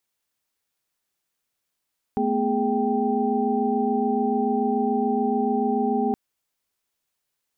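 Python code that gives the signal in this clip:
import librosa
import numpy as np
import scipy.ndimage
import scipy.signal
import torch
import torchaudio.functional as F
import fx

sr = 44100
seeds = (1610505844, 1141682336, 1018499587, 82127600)

y = fx.chord(sr, length_s=3.97, notes=(57, 59, 68, 79), wave='sine', level_db=-25.5)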